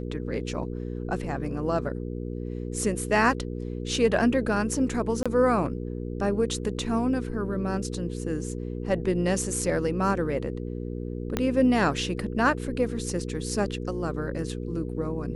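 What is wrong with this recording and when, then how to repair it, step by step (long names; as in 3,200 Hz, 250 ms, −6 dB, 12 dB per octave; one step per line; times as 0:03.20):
mains hum 60 Hz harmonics 8 −33 dBFS
0:05.23–0:05.26: drop-out 26 ms
0:11.37: click −11 dBFS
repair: click removal
hum removal 60 Hz, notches 8
repair the gap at 0:05.23, 26 ms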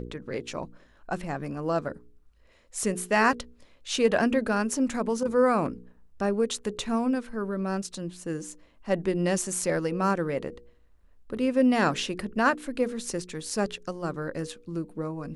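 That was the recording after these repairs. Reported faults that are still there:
0:11.37: click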